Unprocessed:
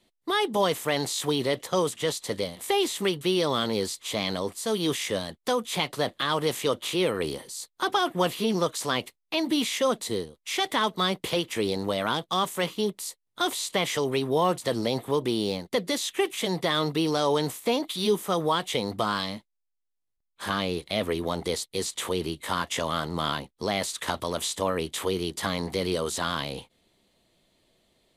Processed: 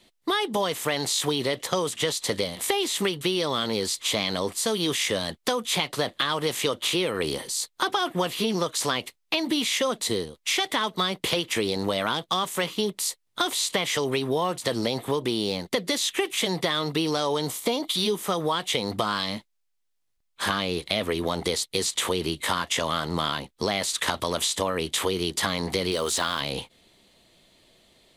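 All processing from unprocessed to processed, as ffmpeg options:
-filter_complex "[0:a]asettb=1/sr,asplit=3[a][b][c];[a]atrim=end=17.374[d];[b]atrim=start=17.37:end=17.95,asetpts=PTS-STARTPTS,afade=t=in:d=0.004:c=qsin,afade=t=out:st=0.576:d=0.004:c=qsin,equalizer=f=1.7k:t=o:w=0.57:g=-5.5,bandreject=f=2.6k:w=12[e];[c]atrim=start=17.946[f];[d][e]acrossfade=d=0.004:c1=hsin:c2=qsin[g];[g][f]acrossfade=d=0.004:c1=qsin:c2=hsin,asettb=1/sr,asplit=3[h][i][j];[h]atrim=end=25.914[k];[i]atrim=start=25.91:end=26.41,asetpts=PTS-STARTPTS,afade=t=in:d=0.004:c=qsin,afade=t=out:st=0.496:d=0.004:c=qsin,equalizer=f=130:w=0.84:g=-6,acrusher=bits=9:dc=4:mix=0:aa=0.000001[l];[j]atrim=start=26.406[m];[k][l]acrossfade=d=0.004:c1=hsin:c2=qsin[n];[n][m]acrossfade=d=0.004:c1=qsin:c2=hsin,equalizer=f=3.6k:w=0.36:g=4,acompressor=threshold=-28dB:ratio=6,volume=6dB"

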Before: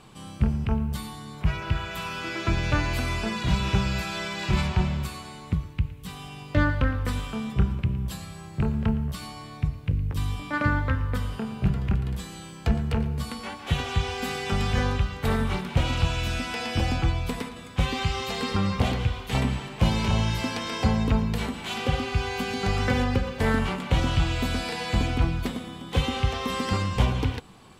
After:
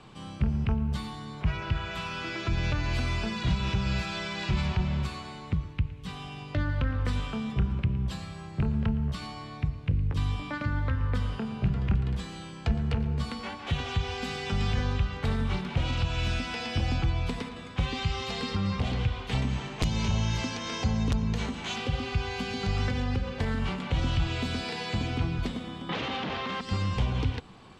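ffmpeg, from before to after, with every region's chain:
-filter_complex "[0:a]asettb=1/sr,asplit=3[a][b][c];[a]atrim=end=19.424[d];[b]atrim=start=19.42:end=21.76,asetpts=PTS-STARTPTS,afade=t=in:d=0.004:c=qsin,afade=t=out:st=2.336:d=0.004:c=qsin,equalizer=f=6.4k:w=6:g=10.5,aeval=exprs='(mod(3.76*val(0)+1,2)-1)/3.76':c=same[e];[c]atrim=start=21.756[f];[d][e]acrossfade=d=0.004:c1=hsin:c2=qsin[g];[g][f]acrossfade=d=0.004:c1=qsin:c2=hsin,asettb=1/sr,asplit=3[h][i][j];[h]atrim=end=24.274[k];[i]atrim=start=24.27:end=25.38,asetpts=PTS-STARTPTS,afade=t=in:d=0.004:c=qsin,afade=t=out:st=1.106:d=0.004:c=qsin,highpass=93,aeval=exprs='val(0)+0.00562*sin(2*PI*400*n/s)':c=same[l];[j]atrim=start=25.376[m];[k][l]acrossfade=d=0.004:c1=hsin:c2=qsin[n];[n][m]acrossfade=d=0.004:c1=qsin:c2=hsin,asettb=1/sr,asplit=3[o][p][q];[o]atrim=end=25.894[r];[p]atrim=start=25.89:end=26.61,asetpts=PTS-STARTPTS,afade=t=in:d=0.004:c=qsin,afade=t=out:st=0.716:d=0.004:c=qsin,equalizer=f=290:w=1.2:g=-7.5,aeval=exprs='0.299*sin(PI/2*7.08*val(0)/0.299)':c=same,highpass=220,lowpass=2k[s];[q]atrim=start=26.606[t];[r][s]acrossfade=d=0.004:c1=hsin:c2=qsin[u];[u][t]acrossfade=d=0.004:c1=qsin:c2=hsin,alimiter=limit=-16dB:level=0:latency=1:release=171,acrossover=split=210|3000[v][w][x];[w]acompressor=threshold=-34dB:ratio=6[y];[v][y][x]amix=inputs=3:normalize=0,lowpass=5.4k"

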